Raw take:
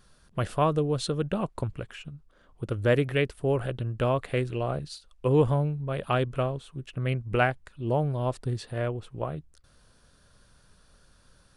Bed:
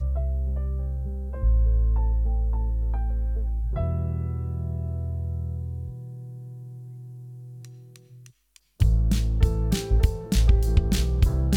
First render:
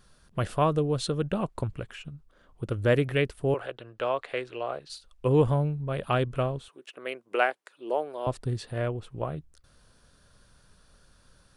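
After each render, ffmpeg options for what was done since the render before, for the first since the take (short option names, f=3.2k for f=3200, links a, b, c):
-filter_complex "[0:a]asettb=1/sr,asplit=3[a][b][c];[a]atrim=end=3.544[d];[b]atrim=start=3.54:end=4.9,asetpts=PTS-STARTPTS,afade=t=in:d=0.004:c=qsin,afade=t=out:st=1.356:d=0.004:c=qsin,acrossover=split=380 6300:gain=0.0891 1 0.2[e][f][g];[e][f][g]amix=inputs=3:normalize=0[h];[c]atrim=start=4.896[i];[d][h]acrossfade=d=0.004:c1=hsin:c2=qsin[j];[j][i]acrossfade=d=0.004:c1=qsin:c2=hsin,asettb=1/sr,asplit=3[k][l][m];[k]atrim=end=6.684[n];[l]atrim=start=6.68:end=8.27,asetpts=PTS-STARTPTS,afade=t=in:d=0.004:c=qsin,afade=t=out:st=1.586:d=0.004:c=qsin,highpass=f=360:w=0.5412,highpass=f=360:w=1.3066[o];[m]atrim=start=8.266[p];[n][o]acrossfade=d=0.004:c1=hsin:c2=qsin[q];[q][p]acrossfade=d=0.004:c1=qsin:c2=hsin"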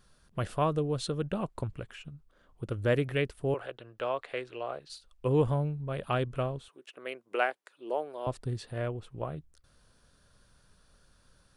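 -af "volume=-4dB"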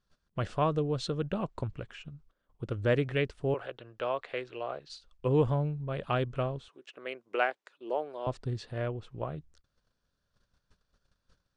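-af "agate=range=-16dB:threshold=-59dB:ratio=16:detection=peak,lowpass=f=7k:w=0.5412,lowpass=f=7k:w=1.3066"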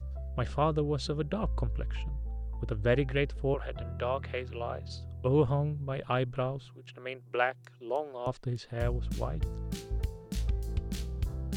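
-filter_complex "[1:a]volume=-13dB[a];[0:a][a]amix=inputs=2:normalize=0"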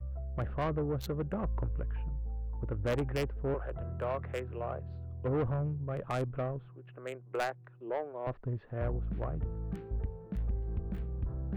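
-filter_complex "[0:a]acrossover=split=410|1900[a][b][c];[c]acrusher=bits=4:mix=0:aa=0.5[d];[a][b][d]amix=inputs=3:normalize=0,asoftclip=type=tanh:threshold=-26.5dB"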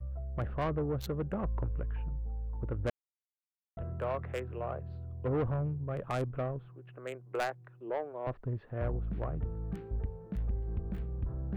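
-filter_complex "[0:a]asplit=3[a][b][c];[a]atrim=end=2.9,asetpts=PTS-STARTPTS,afade=t=out:st=2.896:d=0.004:c=hsin[d];[b]atrim=start=2.9:end=3.77,asetpts=PTS-STARTPTS,volume=0[e];[c]atrim=start=3.77,asetpts=PTS-STARTPTS,afade=t=in:d=0.004:c=hsin[f];[d][e][f]concat=n=3:v=0:a=1"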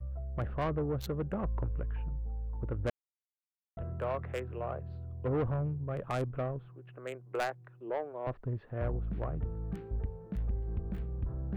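-af anull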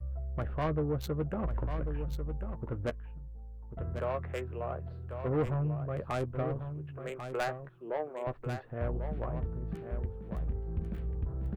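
-filter_complex "[0:a]asplit=2[a][b];[b]adelay=13,volume=-10dB[c];[a][c]amix=inputs=2:normalize=0,asplit=2[d][e];[e]aecho=0:1:1093:0.376[f];[d][f]amix=inputs=2:normalize=0"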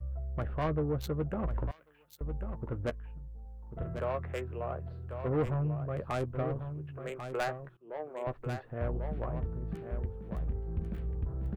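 -filter_complex "[0:a]asettb=1/sr,asplit=3[a][b][c];[a]atrim=end=1.714[d];[b]atrim=start=1.71:end=2.21,asetpts=PTS-STARTPTS,afade=t=in:d=0.004:c=qsin,afade=t=out:st=0.496:d=0.004:c=qsin,aderivative[e];[c]atrim=start=2.206[f];[d][e]acrossfade=d=0.004:c1=hsin:c2=qsin[g];[g][f]acrossfade=d=0.004:c1=qsin:c2=hsin,asettb=1/sr,asplit=3[h][i][j];[h]atrim=end=3.414[k];[i]atrim=start=3.41:end=3.98,asetpts=PTS-STARTPTS,afade=t=in:d=0.004:c=qsin,afade=t=out:st=0.566:d=0.004:c=qsin,asplit=2[l][m];[m]adelay=42,volume=-3.5dB[n];[l][n]amix=inputs=2:normalize=0,atrim=end_sample=25137[o];[j]atrim=start=3.976[p];[k][o]acrossfade=d=0.004:c1=hsin:c2=qsin[q];[q][p]acrossfade=d=0.004:c1=qsin:c2=hsin,asplit=2[r][s];[r]atrim=end=7.77,asetpts=PTS-STARTPTS,afade=t=out:st=7.766:d=0.004:c=hsin:silence=0.1[t];[s]atrim=start=7.77,asetpts=PTS-STARTPTS,afade=t=in:d=0.41:silence=0.1[u];[t][u]concat=n=2:v=0:a=1"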